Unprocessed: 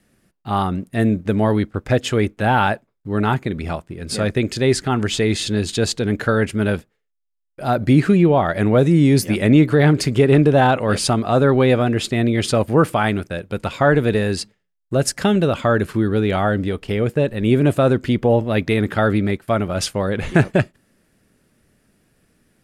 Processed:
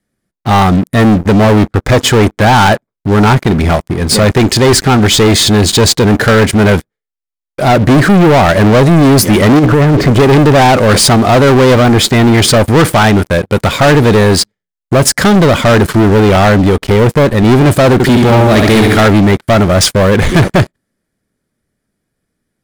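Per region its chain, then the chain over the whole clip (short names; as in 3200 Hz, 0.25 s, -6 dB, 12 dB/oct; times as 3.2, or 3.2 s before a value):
9.59–10.13 LPF 1600 Hz + negative-ratio compressor -16 dBFS, ratio -0.5
17.93–19.06 high shelf 3500 Hz +8 dB + notch comb 510 Hz + flutter echo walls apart 11.7 m, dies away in 0.79 s
whole clip: notch 2700 Hz, Q 6.8; sample leveller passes 5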